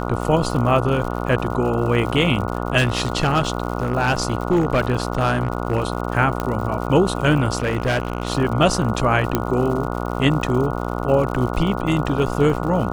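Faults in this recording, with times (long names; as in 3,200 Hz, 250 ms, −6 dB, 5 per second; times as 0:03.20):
mains buzz 60 Hz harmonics 24 −25 dBFS
surface crackle 110 per second −29 dBFS
0:02.77–0:05.88: clipping −12.5 dBFS
0:06.40: click −10 dBFS
0:07.58–0:08.30: clipping −15.5 dBFS
0:09.35: click −4 dBFS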